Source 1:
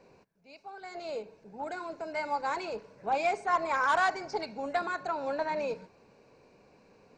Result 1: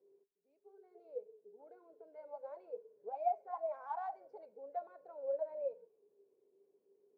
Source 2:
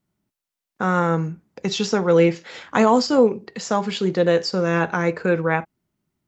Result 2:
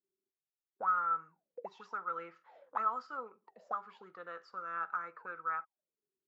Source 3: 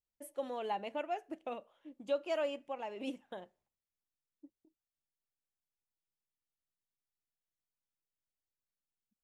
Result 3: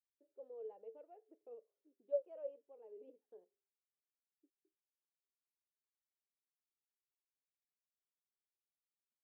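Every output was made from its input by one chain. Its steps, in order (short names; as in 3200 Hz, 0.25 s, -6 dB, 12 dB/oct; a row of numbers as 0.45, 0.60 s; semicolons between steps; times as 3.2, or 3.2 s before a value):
auto-wah 390–1300 Hz, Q 21, up, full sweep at -18 dBFS; gain +1 dB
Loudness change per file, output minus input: -10.5, -17.5, -7.5 LU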